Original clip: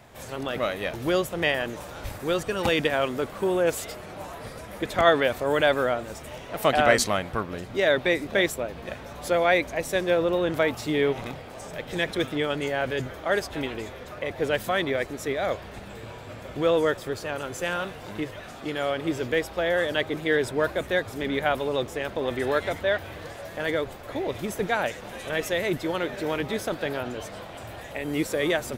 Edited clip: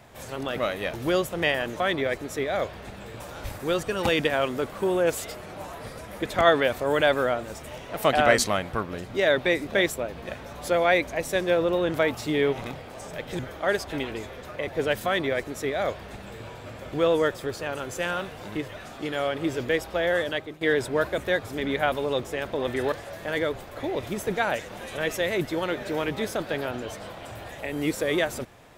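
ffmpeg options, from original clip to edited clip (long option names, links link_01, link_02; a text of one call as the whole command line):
ffmpeg -i in.wav -filter_complex "[0:a]asplit=6[link_01][link_02][link_03][link_04][link_05][link_06];[link_01]atrim=end=1.802[link_07];[link_02]atrim=start=14.688:end=16.092[link_08];[link_03]atrim=start=1.798:end=11.992[link_09];[link_04]atrim=start=13.018:end=20.24,asetpts=PTS-STARTPTS,afade=type=out:start_time=6.792:duration=0.43:silence=0.141254[link_10];[link_05]atrim=start=20.24:end=22.552,asetpts=PTS-STARTPTS,afade=type=in:duration=0.004:curve=hsin:silence=0.141254[link_11];[link_06]atrim=start=23.238[link_12];[link_07][link_08]acrossfade=duration=0.004:curve1=hsin:curve2=hsin[link_13];[link_13][link_09]acrossfade=duration=0.004:curve1=hsin:curve2=hsin[link_14];[link_10][link_11]concat=n=2:v=0:a=1[link_15];[link_14][link_15]acrossfade=duration=0.004:curve1=hsin:curve2=hsin[link_16];[link_16][link_12]acrossfade=duration=0.004:curve1=hsin:curve2=hsin" out.wav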